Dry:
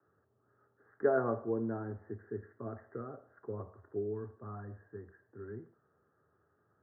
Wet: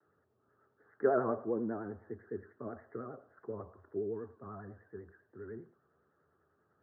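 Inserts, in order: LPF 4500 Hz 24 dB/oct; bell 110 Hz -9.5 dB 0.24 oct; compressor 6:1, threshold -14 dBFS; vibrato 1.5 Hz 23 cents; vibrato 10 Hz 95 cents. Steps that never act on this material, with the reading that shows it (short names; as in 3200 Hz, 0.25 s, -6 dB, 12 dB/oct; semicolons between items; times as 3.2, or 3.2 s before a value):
LPF 4500 Hz: input band ends at 1700 Hz; compressor, threshold -14 dBFS: input peak -17.0 dBFS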